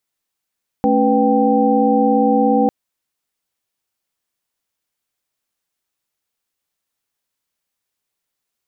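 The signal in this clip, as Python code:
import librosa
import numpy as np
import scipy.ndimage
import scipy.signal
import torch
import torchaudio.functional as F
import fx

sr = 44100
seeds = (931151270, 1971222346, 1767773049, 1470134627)

y = fx.chord(sr, length_s=1.85, notes=(57, 61, 71, 79), wave='sine', level_db=-17.0)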